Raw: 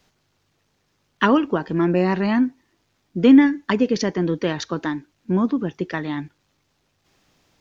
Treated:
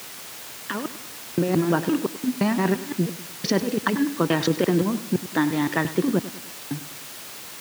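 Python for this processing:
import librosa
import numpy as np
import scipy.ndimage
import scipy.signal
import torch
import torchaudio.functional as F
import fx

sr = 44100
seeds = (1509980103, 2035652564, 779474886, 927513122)

p1 = fx.block_reorder(x, sr, ms=172.0, group=4)
p2 = fx.over_compress(p1, sr, threshold_db=-21.0, ratio=-0.5)
p3 = fx.quant_dither(p2, sr, seeds[0], bits=6, dither='triangular')
p4 = scipy.signal.sosfilt(scipy.signal.butter(4, 100.0, 'highpass', fs=sr, output='sos'), p3)
p5 = fx.high_shelf(p4, sr, hz=5800.0, db=-4.5)
y = p5 + fx.echo_feedback(p5, sr, ms=100, feedback_pct=47, wet_db=-15, dry=0)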